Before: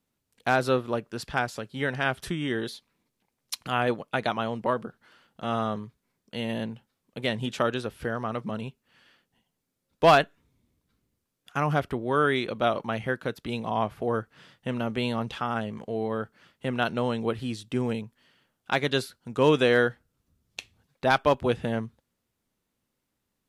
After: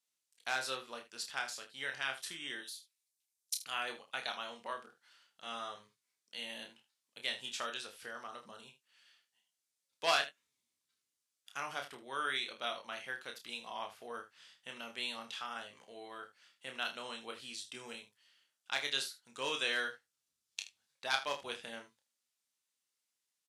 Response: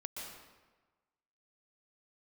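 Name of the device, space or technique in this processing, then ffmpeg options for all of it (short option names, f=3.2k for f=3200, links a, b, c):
piezo pickup straight into a mixer: -filter_complex "[0:a]lowpass=7.6k,aderivative,asettb=1/sr,asplit=3[a][b][c];[a]atrim=end=2.614[d];[b]atrim=start=2.61:end=3.66,asetpts=PTS-STARTPTS,afade=t=in:d=0.004:c=qsin,afade=t=out:st=1.046:d=0.004:c=qsin,aderivative[e];[c]atrim=start=3.656[f];[d][e]acrossfade=d=0.004:c1=hsin:c2=qsin[g];[g][f]acrossfade=d=0.004:c1=qsin:c2=hsin,aecho=1:1:30|78:0.501|0.2,asettb=1/sr,asplit=3[h][i][j];[h]atrim=end=8.274[k];[i]atrim=start=8.27:end=8.68,asetpts=PTS-STARTPTS,afade=t=in:d=0.004:c=qsin,afade=t=out:st=0.406:d=0.004:c=qsin,equalizer=f=2.3k:t=o:w=0.55:g=-12.5[l];[j]atrim=start=8.676[m];[k][l]acrossfade=d=0.004:c1=hsin:c2=qsin[n];[n][m]acrossfade=d=0.004:c1=qsin:c2=hsin,asplit=2[o][p];[p]adelay=21,volume=-11dB[q];[o][q]amix=inputs=2:normalize=0,volume=2dB"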